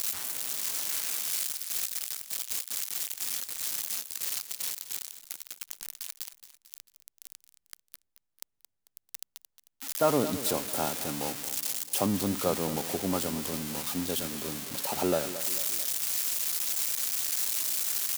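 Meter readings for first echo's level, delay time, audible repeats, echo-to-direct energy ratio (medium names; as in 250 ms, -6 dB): -13.5 dB, 222 ms, 3, -12.5 dB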